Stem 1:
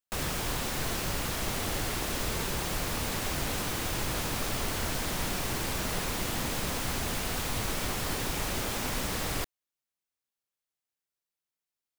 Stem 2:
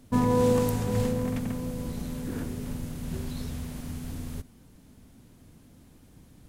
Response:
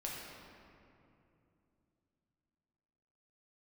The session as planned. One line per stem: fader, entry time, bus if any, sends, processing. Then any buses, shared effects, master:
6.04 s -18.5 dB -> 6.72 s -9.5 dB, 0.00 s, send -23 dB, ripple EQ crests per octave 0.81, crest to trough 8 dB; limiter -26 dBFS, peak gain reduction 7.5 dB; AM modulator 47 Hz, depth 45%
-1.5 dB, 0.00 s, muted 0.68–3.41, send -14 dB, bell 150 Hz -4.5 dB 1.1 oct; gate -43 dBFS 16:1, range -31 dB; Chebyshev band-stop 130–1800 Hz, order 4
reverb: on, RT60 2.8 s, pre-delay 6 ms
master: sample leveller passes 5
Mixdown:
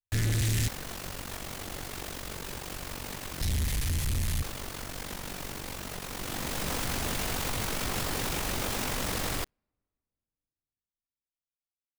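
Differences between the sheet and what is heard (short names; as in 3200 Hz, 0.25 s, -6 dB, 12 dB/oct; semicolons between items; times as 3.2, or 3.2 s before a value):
stem 1: missing ripple EQ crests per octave 0.81, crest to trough 8 dB; stem 2: send off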